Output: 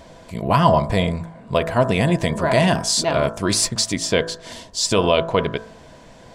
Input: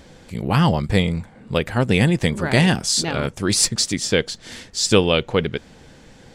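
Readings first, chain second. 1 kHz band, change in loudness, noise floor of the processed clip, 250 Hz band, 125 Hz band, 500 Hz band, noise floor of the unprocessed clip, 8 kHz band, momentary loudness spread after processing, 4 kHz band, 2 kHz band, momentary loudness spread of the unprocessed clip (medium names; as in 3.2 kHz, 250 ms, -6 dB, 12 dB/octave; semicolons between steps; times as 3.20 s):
+6.0 dB, 0.0 dB, -45 dBFS, -1.5 dB, -2.0 dB, +2.5 dB, -47 dBFS, -1.0 dB, 12 LU, -1.0 dB, -1.5 dB, 13 LU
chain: time-frequency box 4.52–4.82 s, 1.1–2.7 kHz -6 dB; de-hum 55.05 Hz, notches 33; peak limiter -8 dBFS, peak gain reduction 6 dB; small resonant body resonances 660/990 Hz, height 17 dB, ringing for 55 ms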